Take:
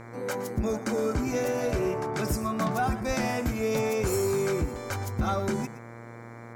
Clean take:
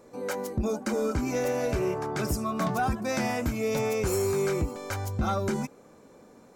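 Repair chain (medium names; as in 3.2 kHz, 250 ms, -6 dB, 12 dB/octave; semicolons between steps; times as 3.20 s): de-hum 116.8 Hz, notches 20; de-plosive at 3.07 s; inverse comb 118 ms -15 dB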